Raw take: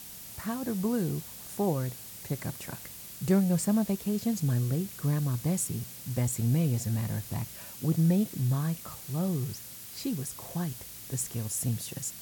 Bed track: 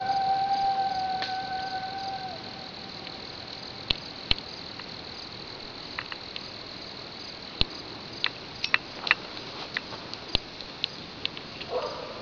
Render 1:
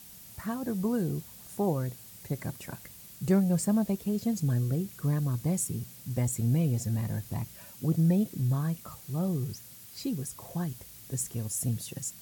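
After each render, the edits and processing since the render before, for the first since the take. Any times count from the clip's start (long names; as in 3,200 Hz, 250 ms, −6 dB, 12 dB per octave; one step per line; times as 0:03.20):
broadband denoise 6 dB, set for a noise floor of −45 dBFS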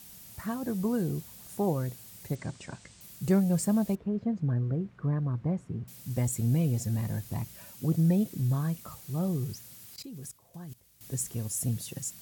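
0:02.35–0:03.01: elliptic low-pass filter 8,400 Hz
0:03.95–0:05.88: Chebyshev low-pass filter 1,400 Hz
0:09.96–0:11.01: output level in coarse steps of 21 dB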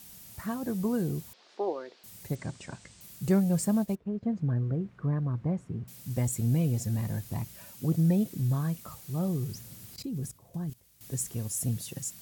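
0:01.33–0:02.04: elliptic band-pass filter 350–4,600 Hz, stop band 50 dB
0:03.71–0:04.23: expander for the loud parts, over −45 dBFS
0:09.54–0:10.70: low-shelf EQ 490 Hz +10.5 dB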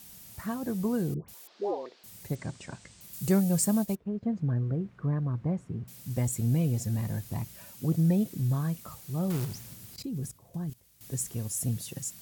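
0:01.14–0:01.86: all-pass dispersion highs, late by 143 ms, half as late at 1,000 Hz
0:03.13–0:03.97: high-shelf EQ 4,400 Hz +8.5 dB
0:09.30–0:09.74: log-companded quantiser 4 bits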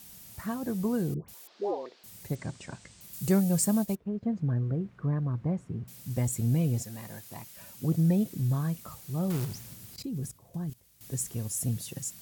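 0:06.82–0:07.57: high-pass filter 610 Hz 6 dB per octave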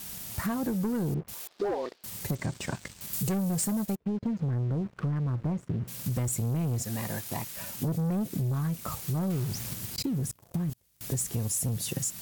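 leveller curve on the samples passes 3
downward compressor 6 to 1, threshold −28 dBFS, peak gain reduction 10.5 dB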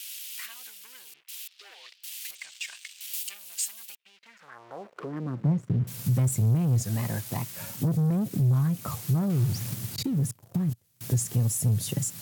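tape wow and flutter 90 cents
high-pass filter sweep 2,800 Hz → 110 Hz, 0:04.15–0:05.62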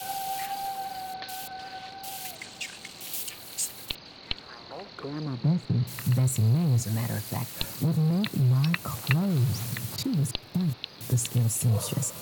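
mix in bed track −7.5 dB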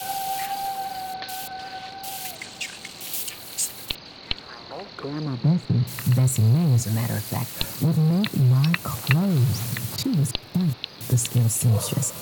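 level +4.5 dB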